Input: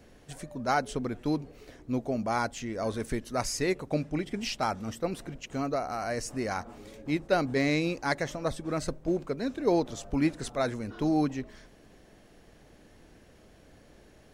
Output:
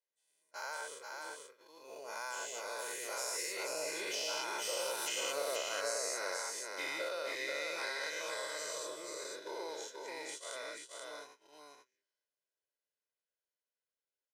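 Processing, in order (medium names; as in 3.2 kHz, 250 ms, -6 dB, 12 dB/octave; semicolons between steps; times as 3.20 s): every event in the spectrogram widened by 240 ms; Doppler pass-by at 5.44 s, 16 m/s, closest 3.9 m; high-pass 440 Hz 12 dB/octave; gate -54 dBFS, range -24 dB; tilt EQ +3 dB/octave; comb 2 ms, depth 65%; compression 6:1, threshold -41 dBFS, peak gain reduction 17 dB; multi-tap echo 44/483 ms -18.5/-3.5 dB; trim +4.5 dB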